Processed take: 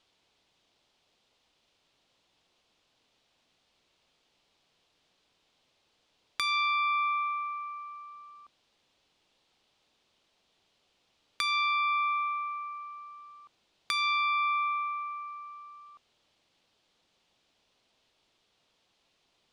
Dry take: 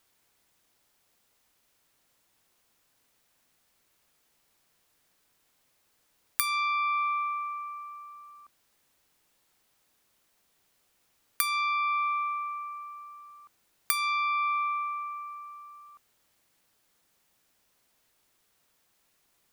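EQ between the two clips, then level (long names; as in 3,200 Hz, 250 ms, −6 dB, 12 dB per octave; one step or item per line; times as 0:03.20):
head-to-tape spacing loss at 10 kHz 28 dB
parametric band 800 Hz +5.5 dB 3 octaves
high shelf with overshoot 2,400 Hz +11.5 dB, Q 1.5
0.0 dB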